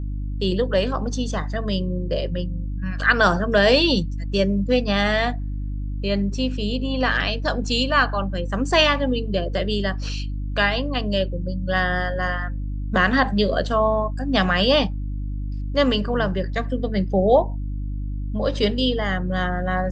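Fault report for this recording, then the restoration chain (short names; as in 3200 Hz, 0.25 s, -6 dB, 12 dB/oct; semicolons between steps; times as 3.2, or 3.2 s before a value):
hum 50 Hz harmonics 6 -27 dBFS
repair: de-hum 50 Hz, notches 6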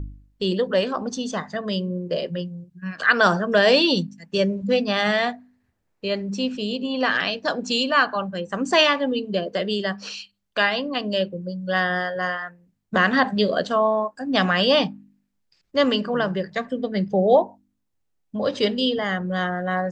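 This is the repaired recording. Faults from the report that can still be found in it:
none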